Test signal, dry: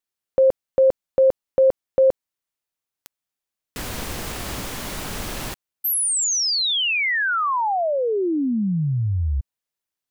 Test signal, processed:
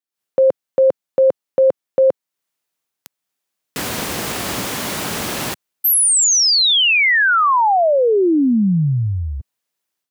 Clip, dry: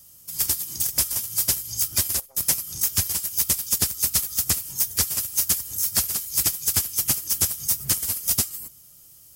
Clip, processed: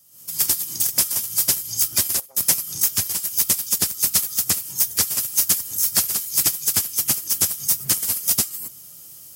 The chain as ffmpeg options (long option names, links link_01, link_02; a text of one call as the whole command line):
ffmpeg -i in.wav -af "highpass=130,dynaudnorm=framelen=110:gausssize=3:maxgain=14dB,volume=-6dB" out.wav